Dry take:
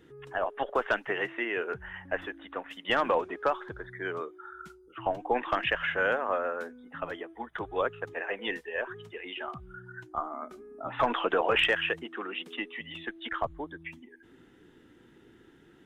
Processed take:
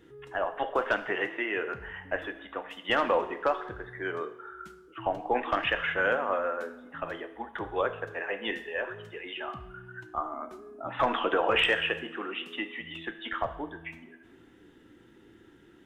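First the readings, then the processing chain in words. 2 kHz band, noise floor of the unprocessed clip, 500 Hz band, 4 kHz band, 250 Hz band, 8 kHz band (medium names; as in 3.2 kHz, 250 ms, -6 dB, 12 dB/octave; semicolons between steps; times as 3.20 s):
+0.5 dB, -58 dBFS, +0.5 dB, +1.0 dB, +1.0 dB, no reading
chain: two-slope reverb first 0.7 s, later 2.1 s, from -18 dB, DRR 8 dB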